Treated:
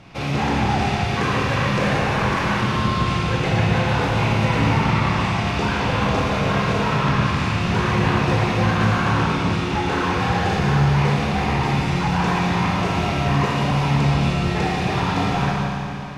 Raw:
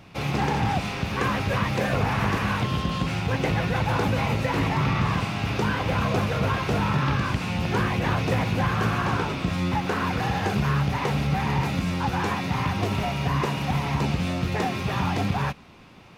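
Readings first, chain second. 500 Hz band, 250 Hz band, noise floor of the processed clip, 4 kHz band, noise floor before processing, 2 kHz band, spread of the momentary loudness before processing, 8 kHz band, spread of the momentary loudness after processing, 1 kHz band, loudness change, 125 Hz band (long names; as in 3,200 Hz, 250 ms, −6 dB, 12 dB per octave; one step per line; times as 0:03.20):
+5.0 dB, +5.0 dB, −24 dBFS, +5.5 dB, −35 dBFS, +5.5 dB, 3 LU, +4.5 dB, 3 LU, +5.5 dB, +5.0 dB, +5.0 dB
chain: low-pass filter 8,500 Hz 12 dB per octave
soft clipping −19 dBFS, distortion −17 dB
four-comb reverb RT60 2.9 s, combs from 25 ms, DRR −2.5 dB
level +2.5 dB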